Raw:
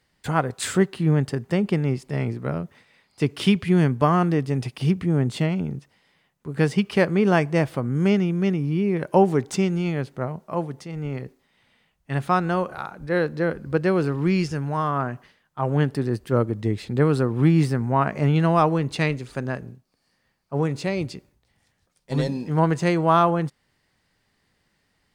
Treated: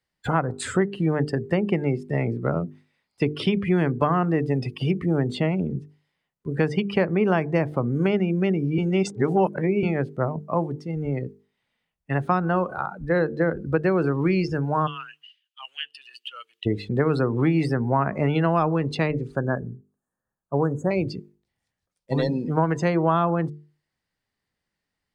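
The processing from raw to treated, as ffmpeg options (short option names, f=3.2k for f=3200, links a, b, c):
-filter_complex "[0:a]asplit=3[a][b][c];[a]afade=t=out:st=14.86:d=0.02[d];[b]highpass=f=2.9k:t=q:w=7.2,afade=t=in:st=14.86:d=0.02,afade=t=out:st=16.65:d=0.02[e];[c]afade=t=in:st=16.65:d=0.02[f];[d][e][f]amix=inputs=3:normalize=0,asettb=1/sr,asplit=3[g][h][i];[g]atrim=end=19.364[j];[h]atrim=start=19.36:end=20.91,asetpts=PTS-STARTPTS,afade=t=in:d=0.004:c=qsin,afade=t=out:st=1.546:d=0.004:c=qsin,asuperstop=centerf=3400:order=20:qfactor=0.73[k];[i]atrim=start=20.906[l];[j][k]acrossfade=d=0.004:c1=hsin:c2=qsin[m];[m][l]acrossfade=d=0.004:c1=qsin:c2=hsin,asplit=3[n][o][p];[n]atrim=end=8.782[q];[o]atrim=start=8.778:end=9.832,asetpts=PTS-STARTPTS,areverse[r];[p]atrim=start=9.828[s];[q][r]acrossfade=d=0.004:c1=hsin:c2=hsin[t];[t][s]acrossfade=d=0.004:c1=hsin:c2=hsin,afftdn=nr=19:nf=-36,bandreject=f=50:t=h:w=6,bandreject=f=100:t=h:w=6,bandreject=f=150:t=h:w=6,bandreject=f=200:t=h:w=6,bandreject=f=250:t=h:w=6,bandreject=f=300:t=h:w=6,bandreject=f=350:t=h:w=6,bandreject=f=400:t=h:w=6,bandreject=f=450:t=h:w=6,acrossover=split=290|1400[u][v][w];[u]acompressor=threshold=-31dB:ratio=4[x];[v]acompressor=threshold=-27dB:ratio=4[y];[w]acompressor=threshold=-39dB:ratio=4[z];[x][y][z]amix=inputs=3:normalize=0,volume=5.5dB"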